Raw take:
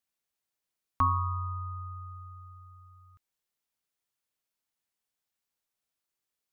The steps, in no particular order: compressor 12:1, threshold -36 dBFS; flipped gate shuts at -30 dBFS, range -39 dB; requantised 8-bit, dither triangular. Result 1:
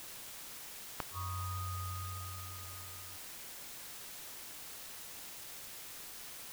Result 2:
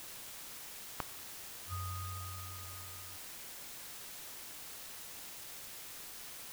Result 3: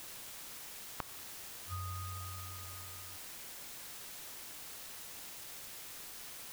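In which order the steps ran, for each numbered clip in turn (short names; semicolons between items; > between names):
compressor > flipped gate > requantised; flipped gate > compressor > requantised; flipped gate > requantised > compressor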